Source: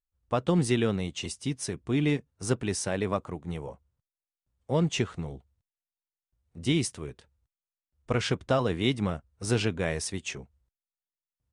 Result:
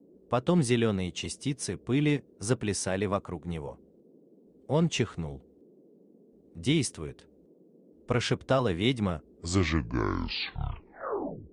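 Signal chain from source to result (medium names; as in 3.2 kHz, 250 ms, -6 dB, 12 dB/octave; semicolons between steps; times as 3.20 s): tape stop on the ending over 2.42 s; band noise 170–470 Hz -58 dBFS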